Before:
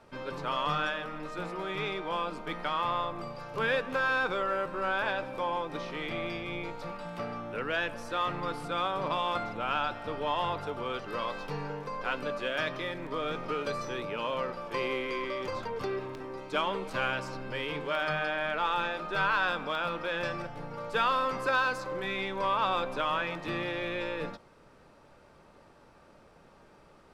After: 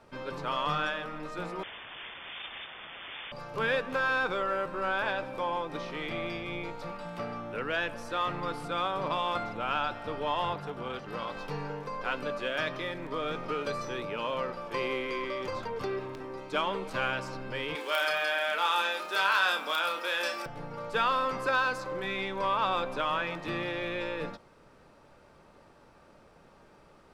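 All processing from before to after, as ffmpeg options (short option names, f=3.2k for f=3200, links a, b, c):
-filter_complex "[0:a]asettb=1/sr,asplit=3[a][b][c];[a]atrim=end=1.634[d];[b]atrim=start=1.63:end=3.32,asetpts=PTS-STARTPTS,afade=t=in:d=0.004:c=qsin,afade=t=out:st=1.686:d=0.004:c=qsin,asubboost=boost=7.5:cutoff=120,aeval=exprs='(mod(63.1*val(0)+1,2)-1)/63.1':c=same,lowpass=f=3.1k:t=q:w=0.5098,lowpass=f=3.1k:t=q:w=0.6013,lowpass=f=3.1k:t=q:w=0.9,lowpass=f=3.1k:t=q:w=2.563,afreqshift=-3600[e];[c]atrim=start=3.316[f];[d][e]acrossfade=d=0.004:c1=hsin:c2=qsin[g];[g][f]acrossfade=d=0.004:c1=qsin:c2=hsin,asettb=1/sr,asplit=3[h][i][j];[h]atrim=end=10.534[k];[i]atrim=start=10.53:end=11.37,asetpts=PTS-STARTPTS,afade=t=in:d=0.004:c=qsin,afade=t=out:st=0.836:d=0.004:c=qsin,lowshelf=f=110:t=q:w=3:g=-11,tremolo=f=290:d=0.667[l];[j]atrim=start=11.366[m];[k][l]acrossfade=d=0.004:c1=hsin:c2=qsin[n];[n][m]acrossfade=d=0.004:c1=qsin:c2=hsin,asettb=1/sr,asplit=3[o][p][q];[o]atrim=end=17.754[r];[p]atrim=start=17.75:end=20.46,asetpts=PTS-STARTPTS,afade=t=in:d=0.004:c=qsin,afade=t=out:st=2.706:d=0.004:c=qsin,highpass=f=220:w=0.5412,highpass=f=220:w=1.3066,aemphasis=mode=production:type=riaa,asplit=2[s][t];[t]adelay=31,volume=-6dB[u];[s][u]amix=inputs=2:normalize=0,atrim=end_sample=119511[v];[q]atrim=start=20.456[w];[r][v]acrossfade=d=0.004:c1=hsin:c2=qsin[x];[x][w]acrossfade=d=0.004:c1=qsin:c2=hsin"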